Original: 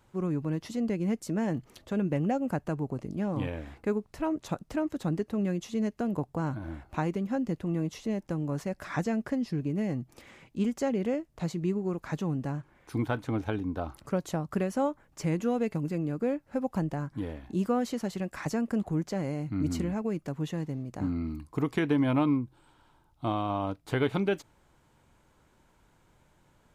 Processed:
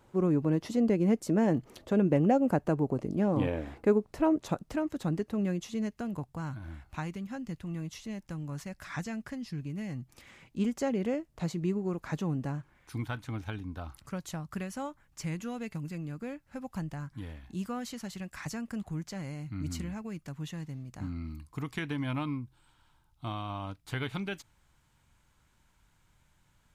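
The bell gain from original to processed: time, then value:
bell 440 Hz 2.3 oct
4.28 s +5.5 dB
4.81 s -2 dB
5.52 s -2 dB
6.46 s -13 dB
9.9 s -13 dB
10.64 s -2 dB
12.43 s -2 dB
13.06 s -13 dB

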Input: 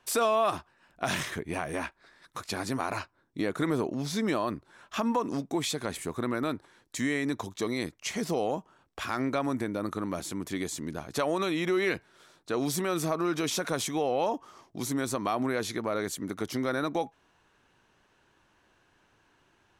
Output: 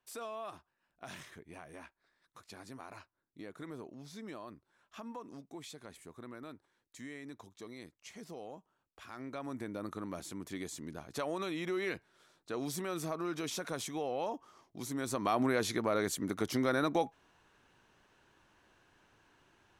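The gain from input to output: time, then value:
9.04 s -17.5 dB
9.72 s -8.5 dB
14.9 s -8.5 dB
15.35 s -1 dB

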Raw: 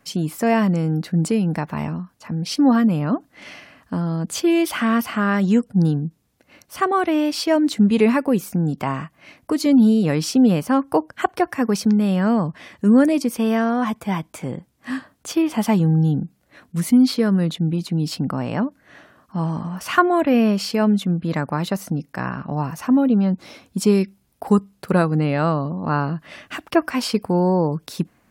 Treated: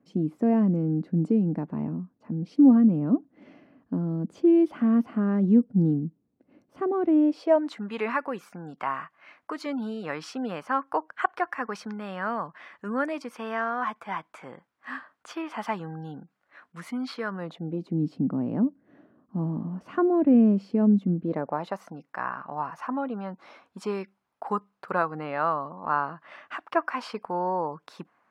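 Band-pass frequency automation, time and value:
band-pass, Q 1.6
7.21 s 280 Hz
7.77 s 1300 Hz
17.28 s 1300 Hz
18.03 s 270 Hz
21.11 s 270 Hz
21.81 s 1100 Hz

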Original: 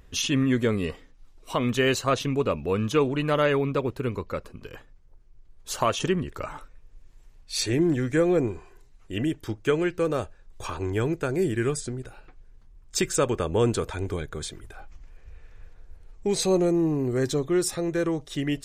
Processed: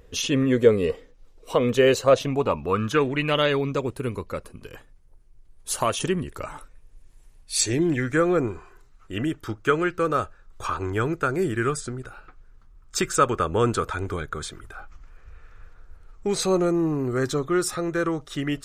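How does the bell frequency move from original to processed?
bell +13 dB 0.48 oct
2.02 s 480 Hz
3.18 s 2100 Hz
3.99 s 10000 Hz
7.54 s 10000 Hz
8.11 s 1300 Hz

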